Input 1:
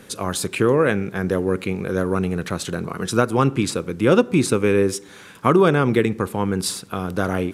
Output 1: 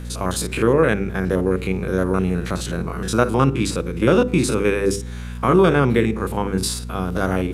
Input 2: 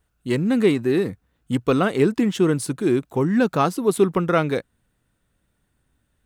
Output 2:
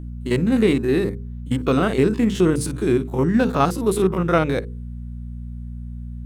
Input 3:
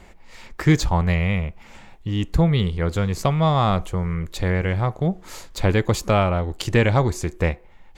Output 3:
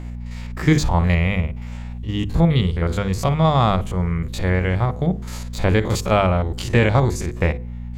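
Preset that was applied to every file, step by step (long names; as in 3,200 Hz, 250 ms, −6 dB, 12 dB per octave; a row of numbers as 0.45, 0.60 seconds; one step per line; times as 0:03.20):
spectrum averaged block by block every 50 ms
mains hum 60 Hz, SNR 11 dB
mains-hum notches 50/100/150/200/250/300/350/400/450/500 Hz
loudness normalisation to −20 LKFS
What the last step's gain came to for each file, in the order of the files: +2.5, +3.0, +3.0 decibels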